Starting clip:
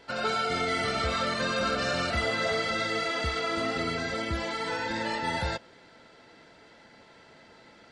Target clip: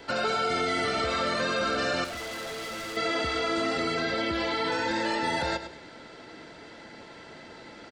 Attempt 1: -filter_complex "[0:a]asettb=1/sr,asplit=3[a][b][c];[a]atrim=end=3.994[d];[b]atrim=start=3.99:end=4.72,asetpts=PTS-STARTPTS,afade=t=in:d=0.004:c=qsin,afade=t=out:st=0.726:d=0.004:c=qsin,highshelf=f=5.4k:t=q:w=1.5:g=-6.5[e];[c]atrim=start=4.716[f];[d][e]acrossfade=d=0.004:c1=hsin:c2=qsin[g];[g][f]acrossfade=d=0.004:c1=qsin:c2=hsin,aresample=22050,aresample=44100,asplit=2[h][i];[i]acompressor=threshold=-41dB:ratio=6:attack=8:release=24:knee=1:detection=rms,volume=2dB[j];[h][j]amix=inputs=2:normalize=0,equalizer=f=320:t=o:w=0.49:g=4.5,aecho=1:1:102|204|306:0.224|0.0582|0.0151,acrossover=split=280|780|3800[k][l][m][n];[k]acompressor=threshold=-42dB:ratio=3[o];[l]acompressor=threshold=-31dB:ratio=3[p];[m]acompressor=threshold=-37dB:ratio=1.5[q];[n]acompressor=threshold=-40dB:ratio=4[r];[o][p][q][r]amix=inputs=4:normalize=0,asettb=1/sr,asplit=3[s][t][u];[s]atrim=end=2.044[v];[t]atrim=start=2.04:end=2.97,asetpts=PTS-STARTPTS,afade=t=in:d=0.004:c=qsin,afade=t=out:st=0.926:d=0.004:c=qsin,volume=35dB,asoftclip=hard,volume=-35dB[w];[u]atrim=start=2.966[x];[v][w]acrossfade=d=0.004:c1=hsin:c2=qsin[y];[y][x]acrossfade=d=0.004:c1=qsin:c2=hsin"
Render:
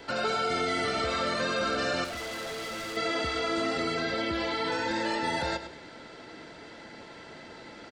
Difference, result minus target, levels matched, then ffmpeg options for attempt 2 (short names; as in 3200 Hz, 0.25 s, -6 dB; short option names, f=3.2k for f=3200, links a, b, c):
compressor: peak gain reduction +8 dB
-filter_complex "[0:a]asettb=1/sr,asplit=3[a][b][c];[a]atrim=end=3.994[d];[b]atrim=start=3.99:end=4.72,asetpts=PTS-STARTPTS,afade=t=in:d=0.004:c=qsin,afade=t=out:st=0.726:d=0.004:c=qsin,highshelf=f=5.4k:t=q:w=1.5:g=-6.5[e];[c]atrim=start=4.716[f];[d][e]acrossfade=d=0.004:c1=hsin:c2=qsin[g];[g][f]acrossfade=d=0.004:c1=qsin:c2=hsin,aresample=22050,aresample=44100,asplit=2[h][i];[i]acompressor=threshold=-31.5dB:ratio=6:attack=8:release=24:knee=1:detection=rms,volume=2dB[j];[h][j]amix=inputs=2:normalize=0,equalizer=f=320:t=o:w=0.49:g=4.5,aecho=1:1:102|204|306:0.224|0.0582|0.0151,acrossover=split=280|780|3800[k][l][m][n];[k]acompressor=threshold=-42dB:ratio=3[o];[l]acompressor=threshold=-31dB:ratio=3[p];[m]acompressor=threshold=-37dB:ratio=1.5[q];[n]acompressor=threshold=-40dB:ratio=4[r];[o][p][q][r]amix=inputs=4:normalize=0,asettb=1/sr,asplit=3[s][t][u];[s]atrim=end=2.044[v];[t]atrim=start=2.04:end=2.97,asetpts=PTS-STARTPTS,afade=t=in:d=0.004:c=qsin,afade=t=out:st=0.926:d=0.004:c=qsin,volume=35dB,asoftclip=hard,volume=-35dB[w];[u]atrim=start=2.966[x];[v][w]acrossfade=d=0.004:c1=hsin:c2=qsin[y];[y][x]acrossfade=d=0.004:c1=qsin:c2=hsin"